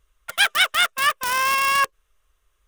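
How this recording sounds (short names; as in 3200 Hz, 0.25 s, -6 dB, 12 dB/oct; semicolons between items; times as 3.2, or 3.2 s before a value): noise floor -69 dBFS; spectral tilt 0.0 dB/oct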